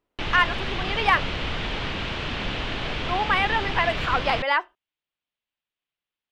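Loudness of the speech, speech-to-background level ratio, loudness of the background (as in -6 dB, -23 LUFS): -24.0 LUFS, 5.0 dB, -29.0 LUFS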